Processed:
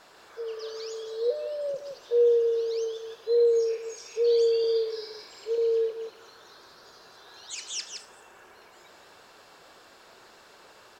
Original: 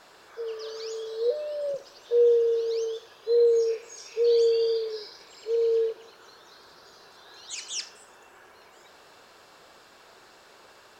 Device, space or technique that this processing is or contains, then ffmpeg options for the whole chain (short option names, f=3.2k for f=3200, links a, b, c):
ducked delay: -filter_complex "[0:a]asplit=3[a][b][c];[b]adelay=167,volume=-5.5dB[d];[c]apad=whole_len=492439[e];[d][e]sidechaincompress=threshold=-42dB:ratio=8:attack=16:release=149[f];[a][f]amix=inputs=2:normalize=0,asettb=1/sr,asplit=3[g][h][i];[g]atrim=end=4.604[j];[h]atrim=start=4.6:end=5.58,asetpts=PTS-STARTPTS,afade=t=in:d=0.004:c=qsin,afade=t=out:st=0.976:d=0.004:c=qsin,asplit=2[k][l];[l]adelay=40,volume=-6dB[m];[k][m]amix=inputs=2:normalize=0,atrim=end_sample=43218[n];[i]atrim=start=5.576[o];[j][n]acrossfade=d=0.004:c1=hsin:c2=qsin[p];[p][o]acrossfade=d=0.004:c1=qsin:c2=hsin,volume=-1dB"